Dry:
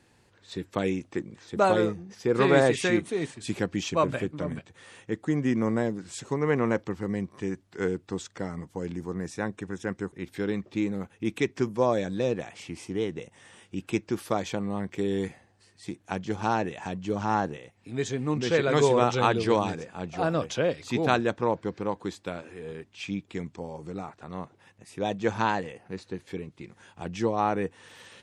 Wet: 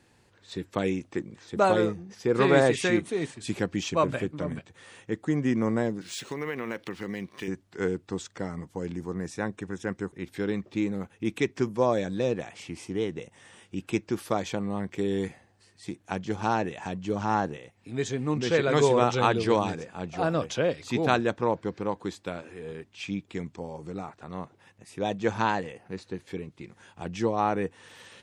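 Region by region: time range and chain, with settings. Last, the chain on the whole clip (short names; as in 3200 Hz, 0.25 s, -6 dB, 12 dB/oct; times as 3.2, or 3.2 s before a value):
6.01–7.48 weighting filter D + compressor 4:1, threshold -29 dBFS + decimation joined by straight lines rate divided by 3×
whole clip: dry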